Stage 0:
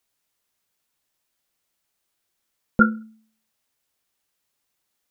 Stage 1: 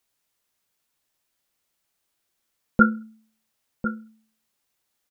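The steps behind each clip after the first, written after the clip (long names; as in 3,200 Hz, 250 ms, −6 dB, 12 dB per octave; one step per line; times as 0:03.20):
slap from a distant wall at 180 metres, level −10 dB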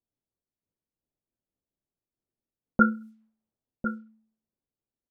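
low-pass that shuts in the quiet parts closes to 390 Hz, open at −23.5 dBFS
amplitude modulation by smooth noise, depth 50%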